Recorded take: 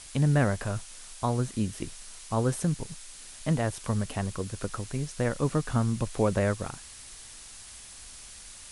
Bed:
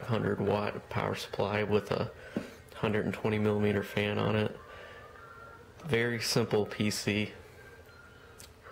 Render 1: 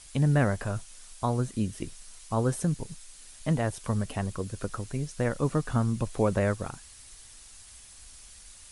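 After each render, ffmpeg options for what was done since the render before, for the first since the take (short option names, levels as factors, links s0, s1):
-af "afftdn=nr=6:nf=-47"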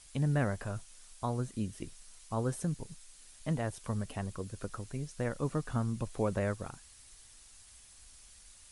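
-af "volume=0.473"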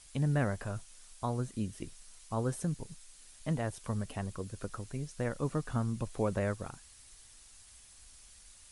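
-af anull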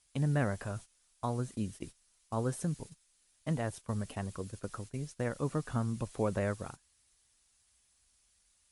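-af "agate=range=0.2:threshold=0.00631:ratio=16:detection=peak,highpass=f=48:p=1"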